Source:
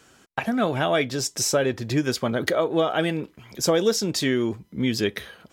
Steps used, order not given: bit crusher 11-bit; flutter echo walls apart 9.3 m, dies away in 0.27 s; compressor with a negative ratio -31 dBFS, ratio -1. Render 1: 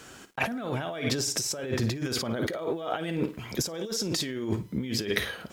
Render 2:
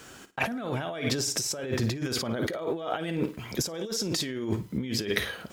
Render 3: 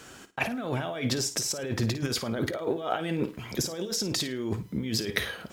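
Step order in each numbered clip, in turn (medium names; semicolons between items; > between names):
flutter echo > compressor with a negative ratio > bit crusher; bit crusher > flutter echo > compressor with a negative ratio; compressor with a negative ratio > bit crusher > flutter echo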